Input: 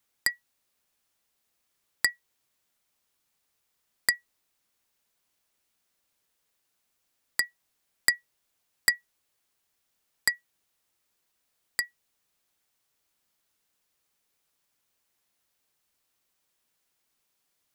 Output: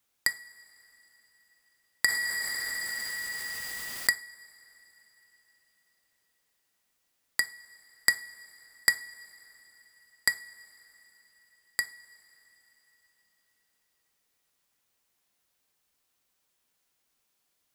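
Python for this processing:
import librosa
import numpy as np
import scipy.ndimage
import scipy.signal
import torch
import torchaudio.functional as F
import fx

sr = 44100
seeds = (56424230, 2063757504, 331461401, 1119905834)

y = fx.rev_double_slope(x, sr, seeds[0], early_s=0.35, late_s=4.1, knee_db=-18, drr_db=10.5)
y = fx.env_flatten(y, sr, amount_pct=70, at=(2.08, 4.09))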